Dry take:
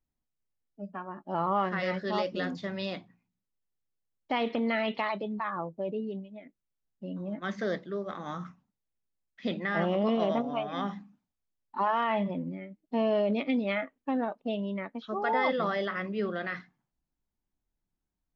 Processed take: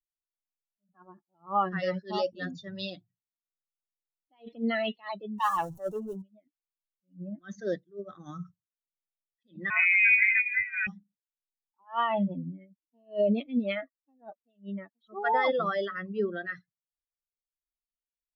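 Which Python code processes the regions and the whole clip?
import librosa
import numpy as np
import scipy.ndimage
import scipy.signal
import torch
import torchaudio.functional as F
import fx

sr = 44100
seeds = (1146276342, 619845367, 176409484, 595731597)

y = fx.chain(x, sr, fx.zero_step(step_db=-36.5),
    fx.peak_eq(hz=900.0, db=9.5, octaves=0.67),
    fx.transformer_sat(knee_hz=1300.0), at=(5.38, 6.22))
y = fx.chain(y, sr, fx.freq_invert(carrier_hz=2700),
    fx.tilt_eq(slope=1.5), at=(9.7, 10.87))
y = fx.bin_expand(y, sr, power=2.0)
y = fx.attack_slew(y, sr, db_per_s=270.0)
y = y * 10.0 ** (6.0 / 20.0)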